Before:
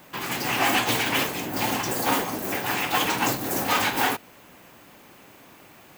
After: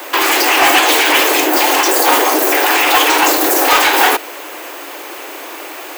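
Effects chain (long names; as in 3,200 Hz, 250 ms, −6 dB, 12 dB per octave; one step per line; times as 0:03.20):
Butterworth high-pass 300 Hz 72 dB per octave
hard clipping −15.5 dBFS, distortion −23 dB
boost into a limiter +24 dB
level −2 dB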